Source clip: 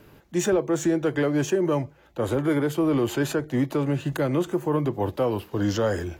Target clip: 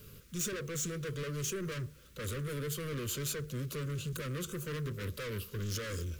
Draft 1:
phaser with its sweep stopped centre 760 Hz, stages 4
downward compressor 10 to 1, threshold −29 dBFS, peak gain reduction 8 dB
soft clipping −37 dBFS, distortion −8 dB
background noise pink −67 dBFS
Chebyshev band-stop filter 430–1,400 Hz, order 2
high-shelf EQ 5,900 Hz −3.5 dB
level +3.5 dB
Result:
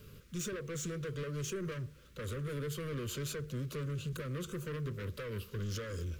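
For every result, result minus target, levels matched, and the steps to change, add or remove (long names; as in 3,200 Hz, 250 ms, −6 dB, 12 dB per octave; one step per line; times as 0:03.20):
downward compressor: peak gain reduction +8 dB; 8,000 Hz band −4.0 dB
remove: downward compressor 10 to 1, threshold −29 dBFS, peak gain reduction 8 dB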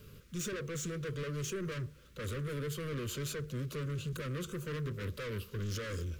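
8,000 Hz band −4.0 dB
change: high-shelf EQ 5,900 Hz +5.5 dB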